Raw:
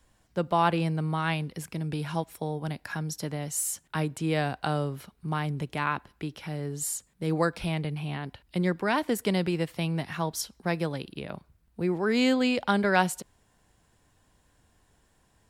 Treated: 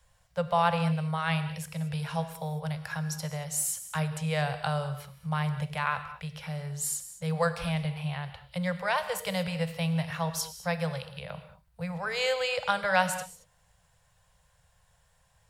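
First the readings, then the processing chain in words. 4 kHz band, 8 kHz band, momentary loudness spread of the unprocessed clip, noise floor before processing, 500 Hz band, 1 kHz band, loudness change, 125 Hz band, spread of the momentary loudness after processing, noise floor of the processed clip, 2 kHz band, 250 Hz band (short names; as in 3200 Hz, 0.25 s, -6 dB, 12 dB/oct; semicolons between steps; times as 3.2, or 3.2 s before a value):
+0.5 dB, +0.5 dB, 11 LU, -67 dBFS, -2.0 dB, -0.5 dB, -1.5 dB, 0.0 dB, 11 LU, -67 dBFS, 0.0 dB, -5.5 dB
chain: elliptic band-stop 170–500 Hz, stop band 40 dB; non-linear reverb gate 0.25 s flat, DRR 9.5 dB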